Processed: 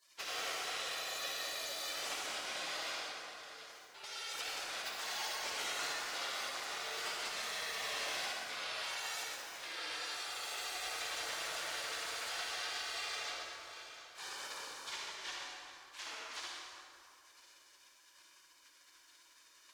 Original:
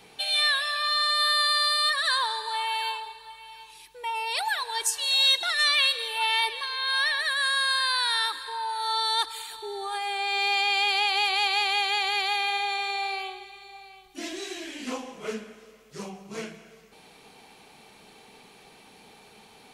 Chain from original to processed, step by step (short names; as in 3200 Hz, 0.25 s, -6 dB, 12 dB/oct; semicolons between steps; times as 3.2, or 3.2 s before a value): minimum comb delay 1.5 ms; HPF 140 Hz 6 dB/oct; spectral gate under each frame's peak -20 dB weak; three-band isolator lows -19 dB, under 390 Hz, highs -17 dB, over 5900 Hz; compressor 2.5:1, threshold -50 dBFS, peak gain reduction 9.5 dB; one-sided clip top -43 dBFS; reverb RT60 2.4 s, pre-delay 48 ms, DRR -2.5 dB; gain +7 dB